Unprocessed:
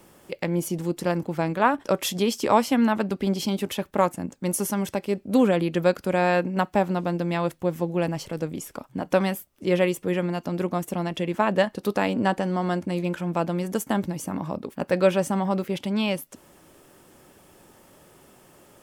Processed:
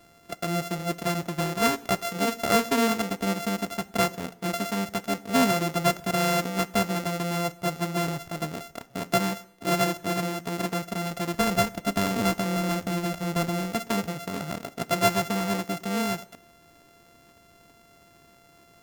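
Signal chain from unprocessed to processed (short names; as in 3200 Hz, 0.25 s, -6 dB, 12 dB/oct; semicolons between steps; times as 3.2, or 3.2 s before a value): sample sorter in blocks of 64 samples; 11.34–13.76 low shelf 91 Hz +11 dB; plate-style reverb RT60 0.8 s, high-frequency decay 0.9×, DRR 16.5 dB; gain -2.5 dB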